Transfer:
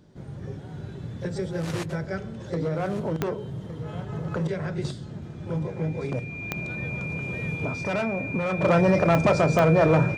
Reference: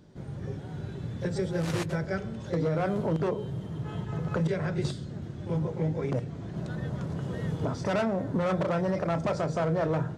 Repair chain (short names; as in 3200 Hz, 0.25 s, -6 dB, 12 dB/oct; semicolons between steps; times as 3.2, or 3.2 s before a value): de-click; notch 2400 Hz, Q 30; inverse comb 1.162 s -14 dB; gain 0 dB, from 8.63 s -8.5 dB